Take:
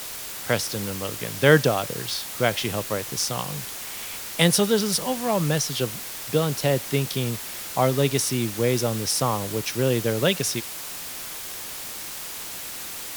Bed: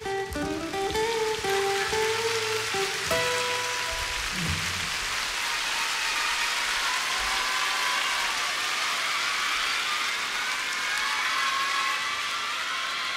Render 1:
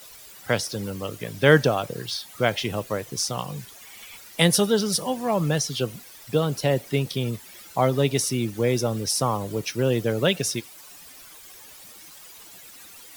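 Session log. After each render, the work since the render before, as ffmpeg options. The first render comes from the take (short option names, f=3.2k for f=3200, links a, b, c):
-af "afftdn=nr=14:nf=-35"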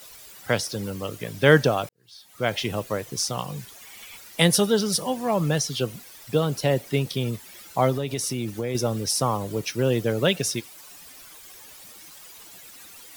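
-filter_complex "[0:a]asettb=1/sr,asplit=3[a][b][c];[a]atrim=end=7.924[d];[b]atrim=start=7.92:end=8.75,asetpts=PTS-STARTPTS,afade=t=in:d=0.004:c=qsin,afade=t=out:st=0.826:d=0.004:c=qsin,acompressor=threshold=-23dB:ratio=6:attack=3.2:release=140:knee=1:detection=peak[e];[c]atrim=start=8.746[f];[d][e]acrossfade=d=0.004:c1=hsin:c2=qsin[g];[g][f]acrossfade=d=0.004:c1=qsin:c2=hsin,asplit=2[h][i];[h]atrim=end=1.89,asetpts=PTS-STARTPTS,afade=t=out:st=1.886:d=0.004:c=hsin[j];[i]atrim=start=1.89,asetpts=PTS-STARTPTS,afade=t=in:d=0.67:c=qua[k];[j][k]concat=n=2:v=0:a=1"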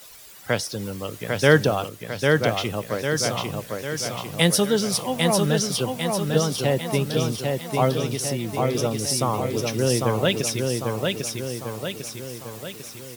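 -af "aecho=1:1:799|1598|2397|3196|3995|4794|5593:0.668|0.354|0.188|0.0995|0.0527|0.0279|0.0148"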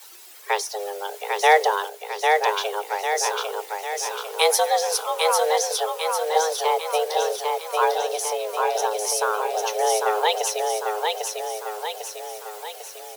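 -filter_complex "[0:a]acrossover=split=270[a][b];[a]acrusher=bits=5:mode=log:mix=0:aa=0.000001[c];[c][b]amix=inputs=2:normalize=0,afreqshift=310"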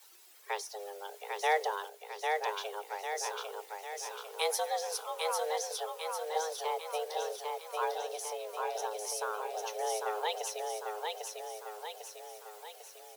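-af "volume=-13dB"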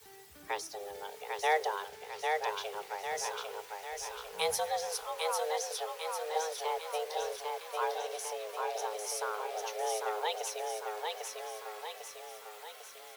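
-filter_complex "[1:a]volume=-26.5dB[a];[0:a][a]amix=inputs=2:normalize=0"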